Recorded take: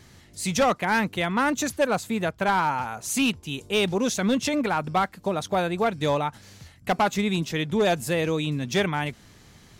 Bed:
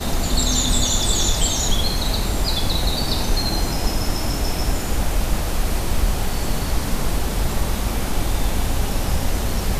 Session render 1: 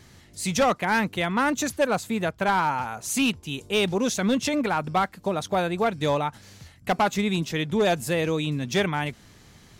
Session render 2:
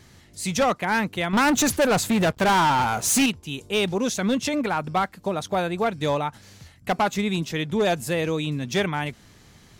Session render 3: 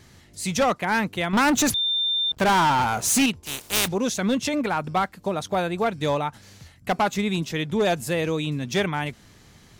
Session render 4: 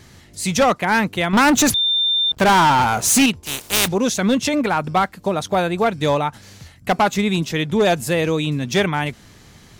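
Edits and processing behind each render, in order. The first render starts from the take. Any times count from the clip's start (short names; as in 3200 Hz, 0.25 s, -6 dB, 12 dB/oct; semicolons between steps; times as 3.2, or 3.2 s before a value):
nothing audible
1.33–3.26 sample leveller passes 3
1.74–2.32 bleep 3590 Hz -20.5 dBFS; 3.45–3.86 spectral contrast lowered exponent 0.28
gain +5.5 dB; limiter -1 dBFS, peak gain reduction 1.5 dB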